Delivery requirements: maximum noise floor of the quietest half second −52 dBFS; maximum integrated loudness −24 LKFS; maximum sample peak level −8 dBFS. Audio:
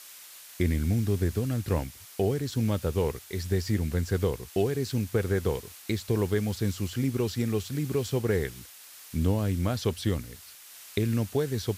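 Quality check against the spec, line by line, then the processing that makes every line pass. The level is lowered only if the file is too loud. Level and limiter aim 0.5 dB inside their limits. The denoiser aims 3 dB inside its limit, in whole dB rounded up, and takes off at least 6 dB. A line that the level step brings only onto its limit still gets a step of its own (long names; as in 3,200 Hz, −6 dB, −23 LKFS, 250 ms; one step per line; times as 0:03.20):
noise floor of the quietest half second −49 dBFS: out of spec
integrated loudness −29.0 LKFS: in spec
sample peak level −11.0 dBFS: in spec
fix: broadband denoise 6 dB, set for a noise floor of −49 dBFS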